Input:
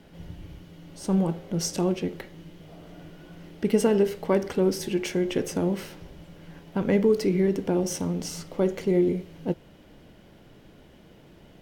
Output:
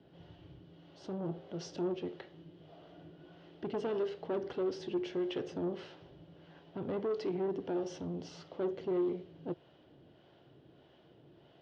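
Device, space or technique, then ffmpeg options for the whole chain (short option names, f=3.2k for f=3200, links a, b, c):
guitar amplifier with harmonic tremolo: -filter_complex "[0:a]acrossover=split=490[a][b];[a]aeval=exprs='val(0)*(1-0.5/2+0.5/2*cos(2*PI*1.6*n/s))':c=same[c];[b]aeval=exprs='val(0)*(1-0.5/2-0.5/2*cos(2*PI*1.6*n/s))':c=same[d];[c][d]amix=inputs=2:normalize=0,asoftclip=type=tanh:threshold=-23.5dB,highpass=100,equalizer=f=130:t=q:w=4:g=5,equalizer=f=200:t=q:w=4:g=-8,equalizer=f=360:t=q:w=4:g=5,equalizer=f=690:t=q:w=4:g=4,equalizer=f=2.2k:t=q:w=4:g=-7,equalizer=f=3.2k:t=q:w=4:g=3,lowpass=f=4.4k:w=0.5412,lowpass=f=4.4k:w=1.3066,volume=-7dB"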